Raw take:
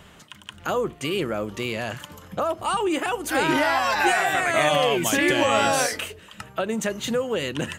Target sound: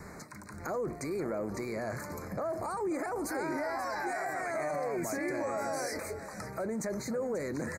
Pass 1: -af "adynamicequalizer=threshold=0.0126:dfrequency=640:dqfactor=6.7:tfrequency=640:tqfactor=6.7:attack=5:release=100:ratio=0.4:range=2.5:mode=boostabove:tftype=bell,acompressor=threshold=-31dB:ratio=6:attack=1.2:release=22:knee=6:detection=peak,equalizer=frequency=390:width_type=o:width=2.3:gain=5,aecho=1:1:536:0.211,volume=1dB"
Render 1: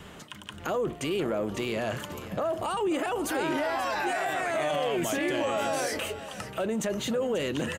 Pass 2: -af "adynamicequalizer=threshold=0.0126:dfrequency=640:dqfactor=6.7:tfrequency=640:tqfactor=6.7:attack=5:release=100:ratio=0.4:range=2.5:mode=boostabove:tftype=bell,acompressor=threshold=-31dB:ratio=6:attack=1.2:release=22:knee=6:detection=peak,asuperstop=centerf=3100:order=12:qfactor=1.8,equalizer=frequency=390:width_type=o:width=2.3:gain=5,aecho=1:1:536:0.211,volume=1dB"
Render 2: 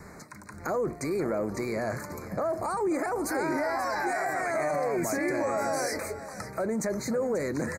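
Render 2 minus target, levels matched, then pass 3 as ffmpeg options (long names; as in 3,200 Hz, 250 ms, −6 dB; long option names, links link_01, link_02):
downward compressor: peak gain reduction −5.5 dB
-af "adynamicequalizer=threshold=0.0126:dfrequency=640:dqfactor=6.7:tfrequency=640:tqfactor=6.7:attack=5:release=100:ratio=0.4:range=2.5:mode=boostabove:tftype=bell,acompressor=threshold=-37.5dB:ratio=6:attack=1.2:release=22:knee=6:detection=peak,asuperstop=centerf=3100:order=12:qfactor=1.8,equalizer=frequency=390:width_type=o:width=2.3:gain=5,aecho=1:1:536:0.211,volume=1dB"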